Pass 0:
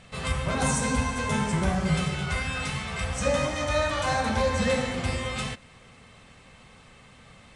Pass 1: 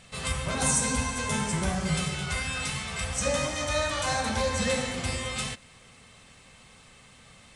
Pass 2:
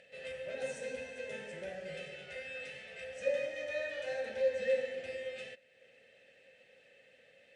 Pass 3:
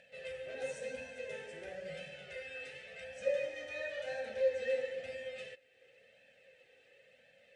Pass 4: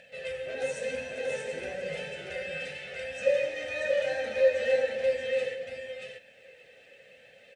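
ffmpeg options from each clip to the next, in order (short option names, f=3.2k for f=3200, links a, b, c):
-af "highshelf=f=4k:g=11,volume=-3.5dB"
-filter_complex "[0:a]acompressor=mode=upward:threshold=-42dB:ratio=2.5,asplit=3[a][b][c];[a]bandpass=f=530:t=q:w=8,volume=0dB[d];[b]bandpass=f=1.84k:t=q:w=8,volume=-6dB[e];[c]bandpass=f=2.48k:t=q:w=8,volume=-9dB[f];[d][e][f]amix=inputs=3:normalize=0"
-af "flanger=delay=1.2:depth=1.4:regen=-33:speed=0.96:shape=sinusoidal,volume=2dB"
-af "aecho=1:1:633:0.631,volume=8dB"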